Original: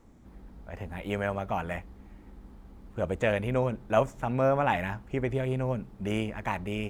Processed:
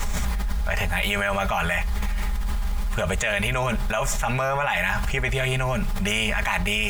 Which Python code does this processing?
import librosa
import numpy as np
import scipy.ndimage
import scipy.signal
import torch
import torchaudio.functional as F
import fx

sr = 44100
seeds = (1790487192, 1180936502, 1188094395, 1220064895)

y = fx.tone_stack(x, sr, knobs='10-0-10')
y = y + 0.6 * np.pad(y, (int(4.9 * sr / 1000.0), 0))[:len(y)]
y = fx.env_flatten(y, sr, amount_pct=100)
y = y * librosa.db_to_amplitude(7.0)